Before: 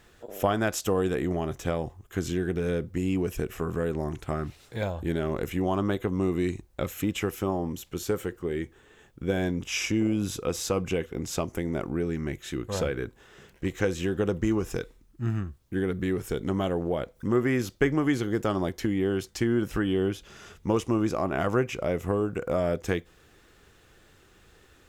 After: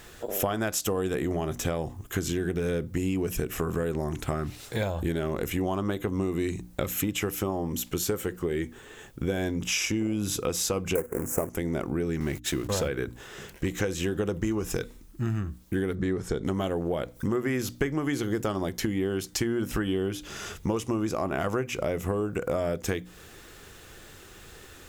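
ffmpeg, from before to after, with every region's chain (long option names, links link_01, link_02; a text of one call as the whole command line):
ffmpeg -i in.wav -filter_complex "[0:a]asettb=1/sr,asplit=3[link_01][link_02][link_03];[link_01]atrim=end=10.954[link_04];[link_02]atrim=start=10.95:end=11.5,asetpts=PTS-STARTPTS,afade=type=in:duration=0.004:curve=qsin,afade=type=out:start_time=0.546:duration=0.004:curve=qsin,equalizer=frequency=500:width=1.7:gain=9,acrusher=bits=2:mode=log:mix=0:aa=0.000001,asuperstop=centerf=3900:order=4:qfactor=0.56[link_05];[link_03]atrim=start=11.496[link_06];[link_04][link_05]acrossfade=duration=0.004:curve1=hsin:curve2=qsin[link_07];[link_07][link_06]acrossfade=duration=0.004:curve1=qsin:curve2=hsin,asettb=1/sr,asplit=3[link_08][link_09][link_10];[link_08]atrim=end=12.204[link_11];[link_09]atrim=start=12.2:end=12.88,asetpts=PTS-STARTPTS,afade=type=in:duration=0.004:curve=qsin,afade=type=out:start_time=0.676:duration=0.004:curve=qsin,aeval=exprs='val(0)+0.5*0.0075*sgn(val(0))':channel_layout=same,agate=range=-46dB:threshold=-39dB:ratio=16:release=100:detection=peak[link_12];[link_10]atrim=start=12.876[link_13];[link_11][link_12]acrossfade=duration=0.004:curve1=hsin:curve2=qsin[link_14];[link_14][link_13]acrossfade=duration=0.004:curve1=qsin:curve2=hsin,asettb=1/sr,asplit=3[link_15][link_16][link_17];[link_15]atrim=end=15.954[link_18];[link_16]atrim=start=15.95:end=16.45,asetpts=PTS-STARTPTS,afade=type=in:duration=0.004:curve=qsin,afade=type=out:start_time=0.496:duration=0.004:curve=qsin,lowpass=5600,equalizer=frequency=2700:width=2.2:gain=-9[link_19];[link_17]atrim=start=16.446[link_20];[link_18][link_19]acrossfade=duration=0.004:curve1=hsin:curve2=qsin[link_21];[link_21][link_20]acrossfade=duration=0.004:curve1=qsin:curve2=hsin,highshelf=frequency=6000:gain=7.5,bandreject=frequency=60:width_type=h:width=6,bandreject=frequency=120:width_type=h:width=6,bandreject=frequency=180:width_type=h:width=6,bandreject=frequency=240:width_type=h:width=6,bandreject=frequency=300:width_type=h:width=6,acompressor=threshold=-35dB:ratio=4,volume=8.5dB" out.wav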